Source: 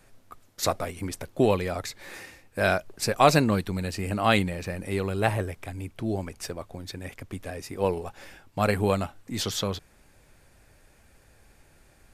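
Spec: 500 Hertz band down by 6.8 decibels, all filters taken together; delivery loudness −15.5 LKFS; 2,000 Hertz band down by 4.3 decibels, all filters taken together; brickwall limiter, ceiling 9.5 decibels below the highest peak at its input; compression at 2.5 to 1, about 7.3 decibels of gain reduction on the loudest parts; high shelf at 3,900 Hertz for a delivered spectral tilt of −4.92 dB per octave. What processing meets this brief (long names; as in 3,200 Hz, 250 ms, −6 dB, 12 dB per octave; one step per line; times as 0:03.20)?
parametric band 500 Hz −8.5 dB
parametric band 2,000 Hz −4.5 dB
high-shelf EQ 3,900 Hz −3 dB
downward compressor 2.5 to 1, threshold −28 dBFS
level +21.5 dB
brickwall limiter −2 dBFS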